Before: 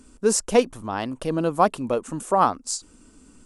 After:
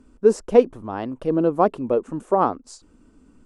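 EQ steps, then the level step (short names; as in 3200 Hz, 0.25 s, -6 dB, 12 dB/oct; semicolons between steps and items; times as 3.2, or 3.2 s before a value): LPF 1300 Hz 6 dB/oct; dynamic EQ 390 Hz, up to +8 dB, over -35 dBFS, Q 1.3; -1.0 dB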